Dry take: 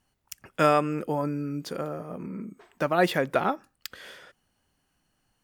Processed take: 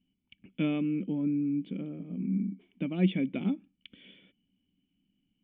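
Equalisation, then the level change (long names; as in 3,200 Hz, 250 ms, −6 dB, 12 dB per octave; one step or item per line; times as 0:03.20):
formant resonators in series i
parametric band 190 Hz +13.5 dB 0.25 octaves
high-shelf EQ 2,300 Hz +9 dB
+4.0 dB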